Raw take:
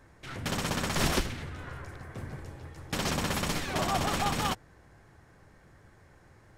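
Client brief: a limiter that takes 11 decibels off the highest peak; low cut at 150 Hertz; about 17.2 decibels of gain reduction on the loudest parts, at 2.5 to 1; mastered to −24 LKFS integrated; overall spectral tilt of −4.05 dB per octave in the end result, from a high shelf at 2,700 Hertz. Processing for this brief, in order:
high-pass filter 150 Hz
high-shelf EQ 2,700 Hz +4 dB
downward compressor 2.5 to 1, threshold −51 dBFS
level +28.5 dB
brickwall limiter −13.5 dBFS

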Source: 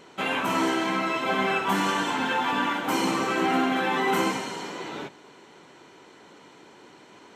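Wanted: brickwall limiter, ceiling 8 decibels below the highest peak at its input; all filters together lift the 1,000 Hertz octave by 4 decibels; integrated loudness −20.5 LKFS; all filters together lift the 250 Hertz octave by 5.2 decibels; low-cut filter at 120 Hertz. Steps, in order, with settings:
high-pass filter 120 Hz
parametric band 250 Hz +6.5 dB
parametric band 1,000 Hz +4.5 dB
level +5 dB
brickwall limiter −11.5 dBFS

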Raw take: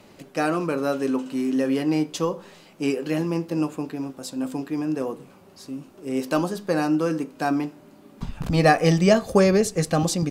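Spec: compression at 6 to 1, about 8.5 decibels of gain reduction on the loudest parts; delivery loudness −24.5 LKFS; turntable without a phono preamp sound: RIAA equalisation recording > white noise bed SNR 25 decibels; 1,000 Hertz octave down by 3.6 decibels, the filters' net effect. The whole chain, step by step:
parametric band 1,000 Hz −4.5 dB
downward compressor 6 to 1, threshold −22 dBFS
RIAA equalisation recording
white noise bed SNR 25 dB
level +5 dB

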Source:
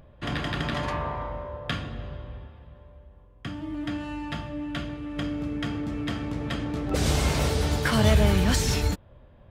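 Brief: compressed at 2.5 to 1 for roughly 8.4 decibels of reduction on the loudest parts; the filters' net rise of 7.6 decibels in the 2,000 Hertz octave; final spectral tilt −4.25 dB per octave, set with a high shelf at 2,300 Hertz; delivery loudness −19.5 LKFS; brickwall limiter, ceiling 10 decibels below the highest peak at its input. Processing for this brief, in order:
parametric band 2,000 Hz +6 dB
high-shelf EQ 2,300 Hz +7 dB
downward compressor 2.5 to 1, threshold −27 dBFS
level +12.5 dB
brickwall limiter −9 dBFS

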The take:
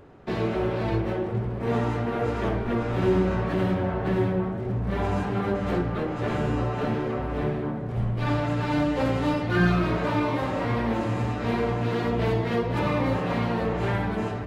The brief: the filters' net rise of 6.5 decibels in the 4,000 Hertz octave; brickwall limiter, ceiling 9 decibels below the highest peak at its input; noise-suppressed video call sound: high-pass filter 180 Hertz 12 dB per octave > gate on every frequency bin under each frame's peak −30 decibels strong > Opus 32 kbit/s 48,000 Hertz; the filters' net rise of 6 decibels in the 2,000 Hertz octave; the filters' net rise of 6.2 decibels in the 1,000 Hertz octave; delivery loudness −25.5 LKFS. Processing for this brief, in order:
parametric band 1,000 Hz +6.5 dB
parametric band 2,000 Hz +4 dB
parametric band 4,000 Hz +6.5 dB
brickwall limiter −16.5 dBFS
high-pass filter 180 Hz 12 dB per octave
gate on every frequency bin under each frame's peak −30 dB strong
level +1.5 dB
Opus 32 kbit/s 48,000 Hz

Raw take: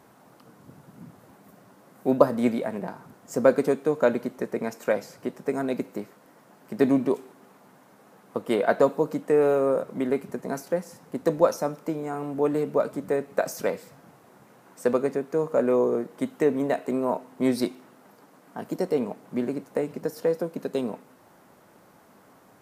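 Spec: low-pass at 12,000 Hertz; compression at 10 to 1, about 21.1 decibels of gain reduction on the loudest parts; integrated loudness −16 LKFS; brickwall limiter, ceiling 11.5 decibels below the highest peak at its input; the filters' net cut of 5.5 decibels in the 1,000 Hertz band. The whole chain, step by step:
low-pass filter 12,000 Hz
parametric band 1,000 Hz −8 dB
downward compressor 10 to 1, threshold −36 dBFS
level +29 dB
brickwall limiter −4 dBFS

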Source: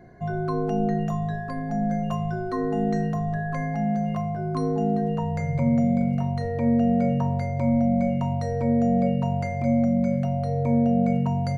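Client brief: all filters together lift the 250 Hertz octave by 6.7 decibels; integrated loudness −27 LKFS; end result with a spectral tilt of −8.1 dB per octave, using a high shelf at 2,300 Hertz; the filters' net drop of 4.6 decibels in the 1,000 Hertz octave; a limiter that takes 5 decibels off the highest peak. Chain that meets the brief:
parametric band 250 Hz +8 dB
parametric band 1,000 Hz −8.5 dB
high-shelf EQ 2,300 Hz −7.5 dB
level −6 dB
brickwall limiter −17.5 dBFS

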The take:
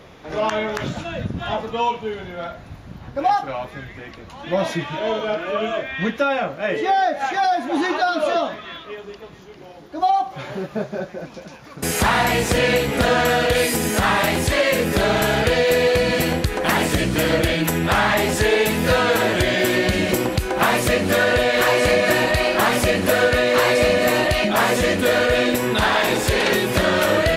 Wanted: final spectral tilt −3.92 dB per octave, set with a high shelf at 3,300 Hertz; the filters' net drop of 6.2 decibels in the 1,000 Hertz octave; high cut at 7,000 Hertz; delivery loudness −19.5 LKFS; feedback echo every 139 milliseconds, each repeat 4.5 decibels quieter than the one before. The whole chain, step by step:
low-pass filter 7,000 Hz
parametric band 1,000 Hz −8.5 dB
high-shelf EQ 3,300 Hz −5.5 dB
repeating echo 139 ms, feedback 60%, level −4.5 dB
level +0.5 dB

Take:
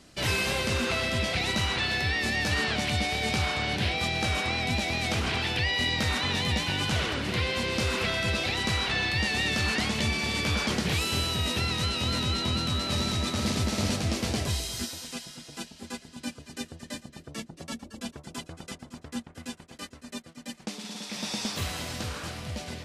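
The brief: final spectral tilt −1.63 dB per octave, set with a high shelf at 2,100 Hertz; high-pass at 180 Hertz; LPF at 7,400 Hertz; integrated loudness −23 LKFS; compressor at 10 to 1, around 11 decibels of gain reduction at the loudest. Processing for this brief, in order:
high-pass filter 180 Hz
low-pass filter 7,400 Hz
high-shelf EQ 2,100 Hz +7.5 dB
downward compressor 10 to 1, threshold −32 dBFS
level +11 dB

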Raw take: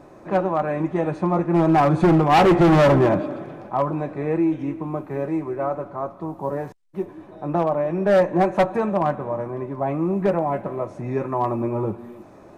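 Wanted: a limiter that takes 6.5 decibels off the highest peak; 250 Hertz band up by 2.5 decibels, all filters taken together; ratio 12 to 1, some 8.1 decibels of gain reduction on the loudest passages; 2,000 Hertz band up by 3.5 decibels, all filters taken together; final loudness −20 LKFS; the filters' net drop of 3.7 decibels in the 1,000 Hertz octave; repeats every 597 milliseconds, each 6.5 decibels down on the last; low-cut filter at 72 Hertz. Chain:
high-pass filter 72 Hz
parametric band 250 Hz +4.5 dB
parametric band 1,000 Hz −7 dB
parametric band 2,000 Hz +6.5 dB
downward compressor 12 to 1, threshold −18 dBFS
brickwall limiter −17 dBFS
repeating echo 597 ms, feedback 47%, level −6.5 dB
level +5.5 dB

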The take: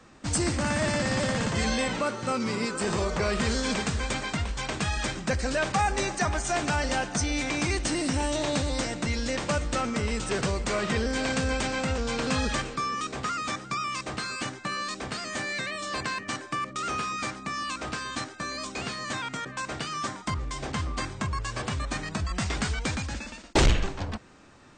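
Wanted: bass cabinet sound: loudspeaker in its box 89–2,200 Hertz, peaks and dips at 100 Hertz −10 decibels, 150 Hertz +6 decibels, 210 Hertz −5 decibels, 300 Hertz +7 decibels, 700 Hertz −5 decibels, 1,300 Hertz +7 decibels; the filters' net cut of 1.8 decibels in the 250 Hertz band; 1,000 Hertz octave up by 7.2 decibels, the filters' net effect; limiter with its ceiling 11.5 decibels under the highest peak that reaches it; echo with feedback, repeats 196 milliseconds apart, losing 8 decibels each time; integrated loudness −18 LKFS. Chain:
parametric band 250 Hz −5.5 dB
parametric band 1,000 Hz +6 dB
brickwall limiter −21.5 dBFS
loudspeaker in its box 89–2,200 Hz, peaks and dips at 100 Hz −10 dB, 150 Hz +6 dB, 210 Hz −5 dB, 300 Hz +7 dB, 700 Hz −5 dB, 1,300 Hz +7 dB
repeating echo 196 ms, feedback 40%, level −8 dB
level +11 dB

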